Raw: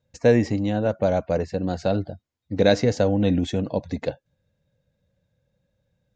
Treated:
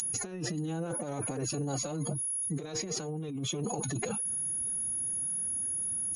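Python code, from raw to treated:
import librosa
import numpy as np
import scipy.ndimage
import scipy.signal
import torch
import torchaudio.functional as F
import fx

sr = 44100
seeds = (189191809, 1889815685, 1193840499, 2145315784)

y = x + 10.0 ** (-25.0 / 20.0) * np.sin(2.0 * np.pi * 6700.0 * np.arange(len(x)) / sr)
y = fx.over_compress(y, sr, threshold_db=-25.0, ratio=-1.0)
y = fx.pitch_keep_formants(y, sr, semitones=7.5)
y = F.gain(torch.from_numpy(y), -8.5).numpy()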